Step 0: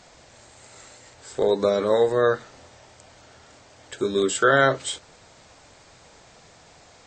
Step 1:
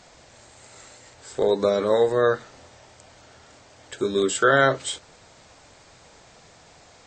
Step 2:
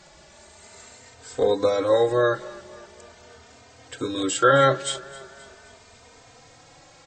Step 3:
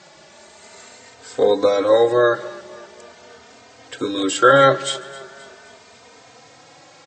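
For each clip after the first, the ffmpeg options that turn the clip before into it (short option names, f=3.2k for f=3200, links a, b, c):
-af anull
-filter_complex "[0:a]aecho=1:1:263|526|789|1052:0.1|0.054|0.0292|0.0157,asplit=2[a][b];[b]adelay=3.1,afreqshift=0.41[c];[a][c]amix=inputs=2:normalize=1,volume=3.5dB"
-filter_complex "[0:a]highpass=160,lowpass=7.2k,asplit=2[a][b];[b]adelay=145.8,volume=-21dB,highshelf=f=4k:g=-3.28[c];[a][c]amix=inputs=2:normalize=0,volume=5dB"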